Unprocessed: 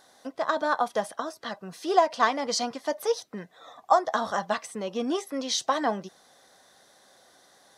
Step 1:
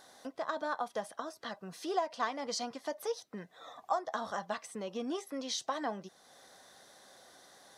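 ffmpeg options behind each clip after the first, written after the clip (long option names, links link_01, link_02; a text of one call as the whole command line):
ffmpeg -i in.wav -af "acompressor=threshold=-50dB:ratio=1.5" out.wav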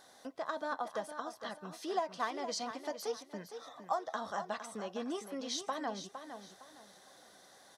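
ffmpeg -i in.wav -af "aecho=1:1:460|920|1380:0.335|0.0938|0.0263,volume=-2dB" out.wav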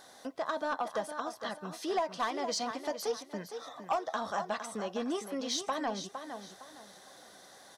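ffmpeg -i in.wav -af "aeval=exprs='0.0944*sin(PI/2*1.58*val(0)/0.0944)':channel_layout=same,volume=-3dB" out.wav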